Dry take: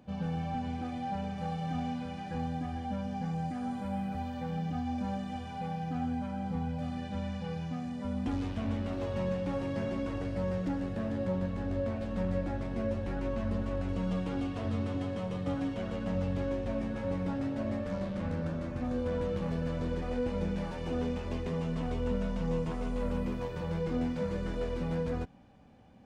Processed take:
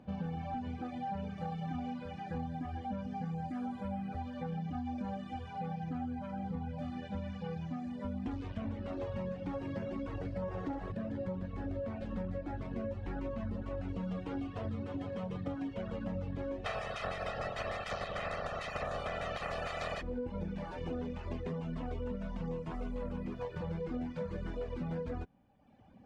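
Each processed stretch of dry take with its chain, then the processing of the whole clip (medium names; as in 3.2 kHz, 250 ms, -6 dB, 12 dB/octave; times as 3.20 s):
10.42–10.92 s: peaking EQ 810 Hz +6 dB 1.4 oct + flutter echo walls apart 10.7 m, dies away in 0.93 s
16.64–20.01 s: spectral peaks clipped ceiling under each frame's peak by 30 dB + peaking EQ 640 Hz +5 dB 0.42 oct + comb 1.6 ms, depth 74%
whole clip: low-pass 2.6 kHz 6 dB/octave; reverb removal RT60 1.1 s; compression, threshold -36 dBFS; trim +1.5 dB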